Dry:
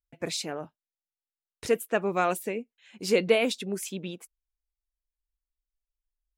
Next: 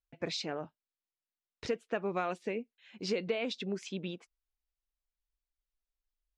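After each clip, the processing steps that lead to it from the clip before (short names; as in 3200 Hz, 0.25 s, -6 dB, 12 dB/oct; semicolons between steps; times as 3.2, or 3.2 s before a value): LPF 5400 Hz 24 dB/oct; compressor 6:1, threshold -27 dBFS, peak gain reduction 11 dB; gain -2.5 dB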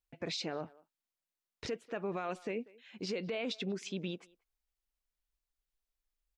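speakerphone echo 0.19 s, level -24 dB; limiter -29.5 dBFS, peak gain reduction 9 dB; gain +1 dB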